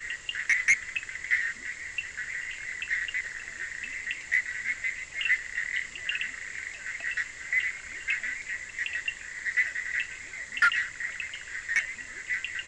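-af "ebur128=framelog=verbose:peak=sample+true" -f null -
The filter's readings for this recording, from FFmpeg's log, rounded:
Integrated loudness:
  I:         -29.6 LUFS
  Threshold: -39.6 LUFS
Loudness range:
  LRA:         2.9 LU
  Threshold: -50.0 LUFS
  LRA low:   -31.5 LUFS
  LRA high:  -28.6 LUFS
Sample peak:
  Peak:      -11.0 dBFS
True peak:
  Peak:      -11.0 dBFS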